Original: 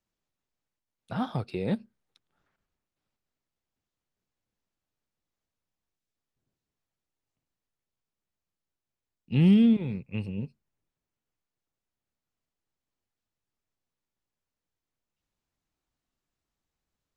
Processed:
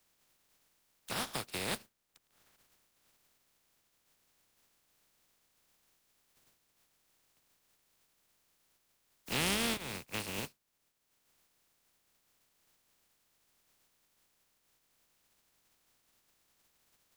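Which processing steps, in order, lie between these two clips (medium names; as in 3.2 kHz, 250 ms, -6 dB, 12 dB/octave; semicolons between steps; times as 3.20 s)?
spectral contrast reduction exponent 0.28; three bands compressed up and down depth 70%; trim -8.5 dB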